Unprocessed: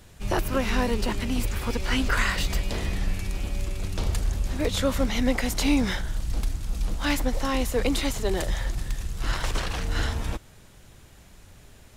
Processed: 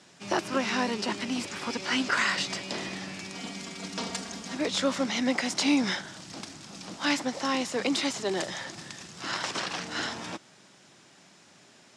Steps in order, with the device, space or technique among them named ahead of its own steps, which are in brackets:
0:03.35–0:04.55: comb filter 4.3 ms, depth 87%
television speaker (loudspeaker in its box 180–8,200 Hz, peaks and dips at 230 Hz −3 dB, 470 Hz −6 dB, 5,200 Hz +5 dB)

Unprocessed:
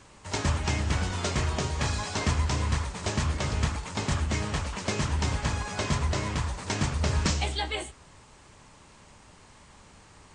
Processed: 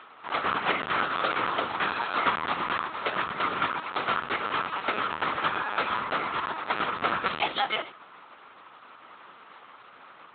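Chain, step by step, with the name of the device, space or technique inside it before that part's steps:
talking toy (linear-prediction vocoder at 8 kHz; high-pass filter 400 Hz 12 dB per octave; parametric band 1,300 Hz +11.5 dB 0.42 octaves)
level +3.5 dB

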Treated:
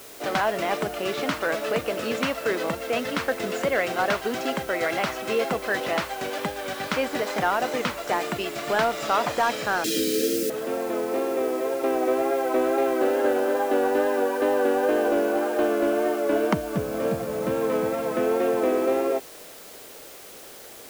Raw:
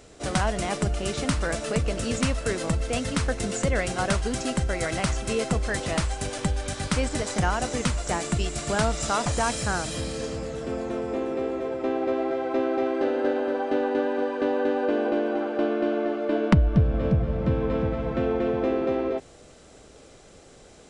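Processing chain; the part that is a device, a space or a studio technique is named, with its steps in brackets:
tape answering machine (band-pass filter 340–3,300 Hz; soft clipping −16.5 dBFS, distortion −22 dB; tape wow and flutter; white noise bed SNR 20 dB)
0:09.84–0:10.50: drawn EQ curve 140 Hz 0 dB, 380 Hz +13 dB, 940 Hz −30 dB, 1,400 Hz −5 dB, 6,100 Hz +13 dB
level +5 dB

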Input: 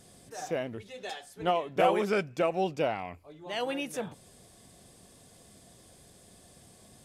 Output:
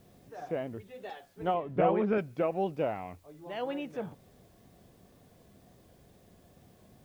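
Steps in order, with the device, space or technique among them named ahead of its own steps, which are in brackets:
cassette deck with a dirty head (head-to-tape spacing loss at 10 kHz 34 dB; tape wow and flutter; white noise bed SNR 35 dB)
0:01.54–0:02.18: bass and treble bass +7 dB, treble −10 dB

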